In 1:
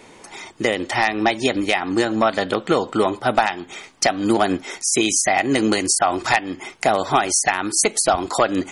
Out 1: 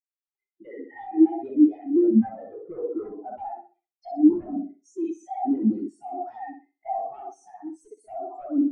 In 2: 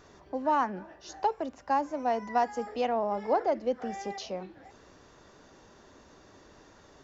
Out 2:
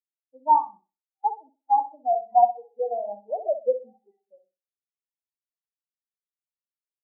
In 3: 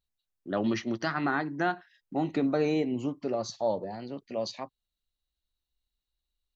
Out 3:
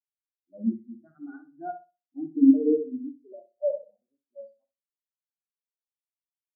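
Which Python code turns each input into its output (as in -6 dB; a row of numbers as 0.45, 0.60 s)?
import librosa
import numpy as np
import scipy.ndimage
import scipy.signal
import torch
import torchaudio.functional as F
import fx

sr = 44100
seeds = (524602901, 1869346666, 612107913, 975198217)

y = fx.room_flutter(x, sr, wall_m=10.8, rt60_s=1.1)
y = 10.0 ** (-15.0 / 20.0) * (np.abs((y / 10.0 ** (-15.0 / 20.0) + 3.0) % 4.0 - 2.0) - 1.0)
y = fx.spectral_expand(y, sr, expansion=4.0)
y = y * 10.0 ** (8.0 / 20.0)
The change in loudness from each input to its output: -5.5, +6.0, +6.0 LU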